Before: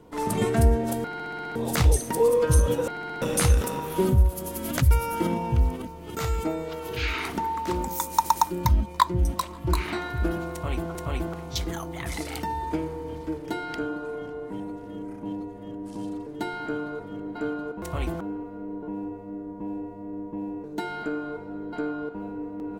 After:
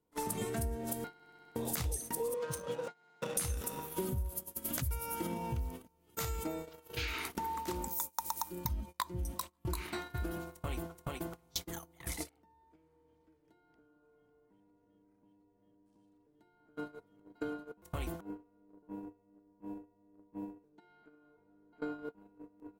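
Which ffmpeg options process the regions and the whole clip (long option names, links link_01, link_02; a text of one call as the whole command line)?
ffmpeg -i in.wav -filter_complex "[0:a]asettb=1/sr,asplit=3[link_01][link_02][link_03];[link_01]atrim=end=2.344[link_04];[link_02]atrim=start=2.34:end=3.37,asetpts=PTS-STARTPTS,afade=type=in:duration=0.004:curve=qsin,afade=type=out:start_time=1.026:duration=0.004:curve=qsin,highpass=frequency=150:width=0.5412,highpass=frequency=150:width=1.3066,equalizer=frequency=280:width_type=o:width=0.71:gain=-11.5,adynamicsmooth=sensitivity=5.5:basefreq=1700[link_05];[link_03]atrim=start=3.366[link_06];[link_04][link_05]acrossfade=duration=0.004:curve1=hsin:curve2=qsin[link_07];[link_07][link_06]acrossfade=duration=0.004:curve1=qsin:curve2=hsin,asettb=1/sr,asplit=3[link_08][link_09][link_10];[link_08]atrim=end=11.084[link_11];[link_09]atrim=start=11.08:end=11.7,asetpts=PTS-STARTPTS,afade=type=in:duration=0.004:curve=qsin,afade=type=out:start_time=0.616:duration=0.004:curve=qsin,highpass=110,aeval=exprs='val(0)+0.00631*(sin(2*PI*60*n/s)+sin(2*PI*2*60*n/s)/2+sin(2*PI*3*60*n/s)/3+sin(2*PI*4*60*n/s)/4+sin(2*PI*5*60*n/s)/5)':channel_layout=same[link_12];[link_10]atrim=start=11.696[link_13];[link_11][link_12]acrossfade=duration=0.004:curve1=hsin:curve2=qsin[link_14];[link_14][link_13]acrossfade=duration=0.004:curve1=qsin:curve2=hsin,asettb=1/sr,asplit=3[link_15][link_16][link_17];[link_15]atrim=end=12.294[link_18];[link_16]atrim=start=12.29:end=16.77,asetpts=PTS-STARTPTS,afade=type=in:duration=0.004:curve=qsin,afade=type=out:start_time=4.476:duration=0.004:curve=qsin,acrossover=split=160|1200[link_19][link_20][link_21];[link_19]acompressor=threshold=-48dB:ratio=4[link_22];[link_20]acompressor=threshold=-37dB:ratio=4[link_23];[link_21]acompressor=threshold=-48dB:ratio=4[link_24];[link_22][link_23][link_24]amix=inputs=3:normalize=0,lowpass=frequency=1800:poles=1[link_25];[link_17]atrim=start=16.766[link_26];[link_18][link_25]acrossfade=duration=0.004:curve1=hsin:curve2=qsin[link_27];[link_27][link_26]acrossfade=duration=0.004:curve1=qsin:curve2=hsin,asettb=1/sr,asplit=3[link_28][link_29][link_30];[link_28]atrim=end=20.694[link_31];[link_29]atrim=start=20.69:end=21.82,asetpts=PTS-STARTPTS,afade=type=in:duration=0.004:curve=qsin,afade=type=out:start_time=1.126:duration=0.004:curve=qsin,lowpass=3200,acompressor=threshold=-31dB:ratio=6:attack=3.2:release=140:knee=1:detection=peak[link_32];[link_30]atrim=start=21.816[link_33];[link_31][link_32]acrossfade=duration=0.004:curve1=hsin:curve2=qsin[link_34];[link_34][link_33]acrossfade=duration=0.004:curve1=qsin:curve2=hsin,agate=range=-30dB:threshold=-30dB:ratio=16:detection=peak,aemphasis=mode=production:type=50kf,acompressor=threshold=-37dB:ratio=4" out.wav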